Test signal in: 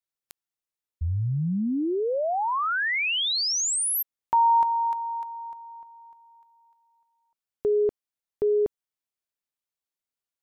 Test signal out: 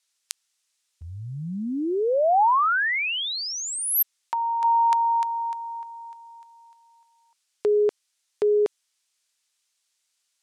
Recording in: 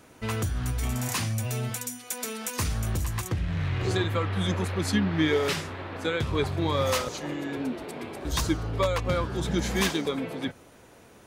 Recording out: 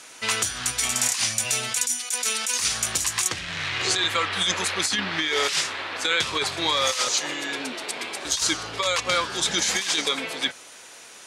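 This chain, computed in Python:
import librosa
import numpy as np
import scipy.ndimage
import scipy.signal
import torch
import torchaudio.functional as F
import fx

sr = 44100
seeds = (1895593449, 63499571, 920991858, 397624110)

y = fx.weighting(x, sr, curve='ITU-R 468')
y = fx.over_compress(y, sr, threshold_db=-27.0, ratio=-1.0)
y = F.gain(torch.from_numpy(y), 4.0).numpy()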